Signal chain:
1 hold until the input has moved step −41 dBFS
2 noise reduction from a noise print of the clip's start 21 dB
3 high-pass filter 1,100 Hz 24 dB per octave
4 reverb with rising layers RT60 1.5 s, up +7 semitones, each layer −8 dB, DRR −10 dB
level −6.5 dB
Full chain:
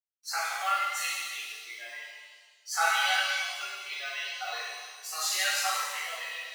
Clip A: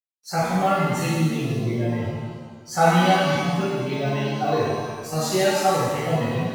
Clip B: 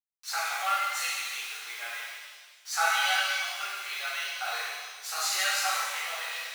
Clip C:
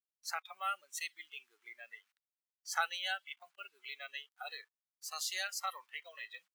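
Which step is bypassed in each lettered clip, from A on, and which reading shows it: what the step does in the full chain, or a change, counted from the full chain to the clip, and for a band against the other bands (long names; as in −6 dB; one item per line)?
3, 500 Hz band +22.0 dB
2, change in momentary loudness spread −3 LU
4, change in crest factor +4.0 dB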